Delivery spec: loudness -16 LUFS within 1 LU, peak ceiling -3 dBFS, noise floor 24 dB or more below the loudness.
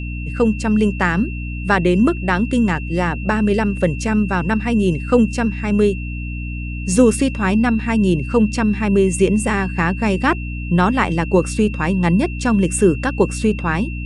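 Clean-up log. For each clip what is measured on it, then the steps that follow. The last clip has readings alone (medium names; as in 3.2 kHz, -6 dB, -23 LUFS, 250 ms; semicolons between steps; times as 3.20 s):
hum 60 Hz; highest harmonic 300 Hz; hum level -23 dBFS; steady tone 2.7 kHz; tone level -33 dBFS; loudness -18.0 LUFS; peak level -1.0 dBFS; loudness target -16.0 LUFS
-> hum notches 60/120/180/240/300 Hz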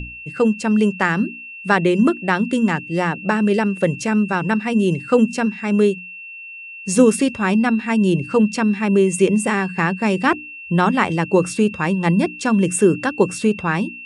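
hum not found; steady tone 2.7 kHz; tone level -33 dBFS
-> band-stop 2.7 kHz, Q 30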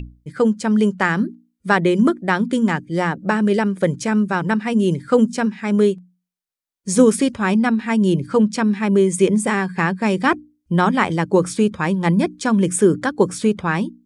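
steady tone not found; loudness -18.5 LUFS; peak level -1.0 dBFS; loudness target -16.0 LUFS
-> trim +2.5 dB; peak limiter -3 dBFS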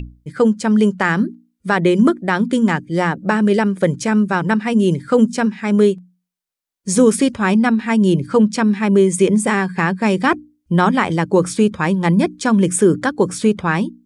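loudness -16.5 LUFS; peak level -3.0 dBFS; noise floor -74 dBFS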